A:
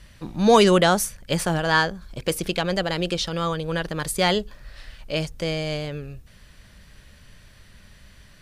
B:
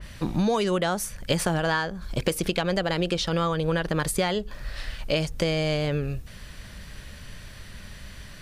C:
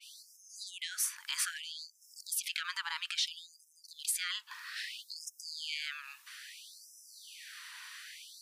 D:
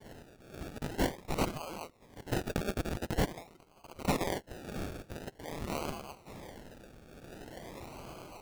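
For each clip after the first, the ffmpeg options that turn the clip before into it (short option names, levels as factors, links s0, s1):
-af "acompressor=threshold=0.0398:ratio=20,adynamicequalizer=threshold=0.00447:dfrequency=2900:dqfactor=0.7:tfrequency=2900:tqfactor=0.7:attack=5:release=100:ratio=0.375:range=2:mode=cutabove:tftype=highshelf,volume=2.37"
-af "alimiter=limit=0.0944:level=0:latency=1:release=21,afftfilt=real='re*gte(b*sr/1024,840*pow(5100/840,0.5+0.5*sin(2*PI*0.61*pts/sr)))':imag='im*gte(b*sr/1024,840*pow(5100/840,0.5+0.5*sin(2*PI*0.61*pts/sr)))':win_size=1024:overlap=0.75"
-filter_complex "[0:a]acrossover=split=1800[s0][s1];[s0]aeval=exprs='sgn(val(0))*max(abs(val(0))-0.00112,0)':c=same[s2];[s2][s1]amix=inputs=2:normalize=0,acrusher=samples=34:mix=1:aa=0.000001:lfo=1:lforange=20.4:lforate=0.46,volume=1.5"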